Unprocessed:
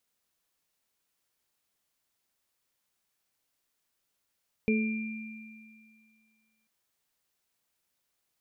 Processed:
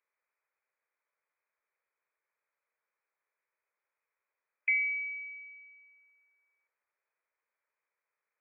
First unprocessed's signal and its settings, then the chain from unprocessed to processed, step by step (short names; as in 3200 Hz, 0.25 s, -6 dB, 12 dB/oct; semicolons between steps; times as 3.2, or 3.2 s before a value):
sine partials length 1.99 s, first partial 220 Hz, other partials 433/2380 Hz, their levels -3/-8 dB, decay 2.06 s, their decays 0.55/2.48 s, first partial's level -23 dB
inverted band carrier 2500 Hz; steep high-pass 430 Hz 36 dB/oct; bell 730 Hz -8.5 dB 0.27 oct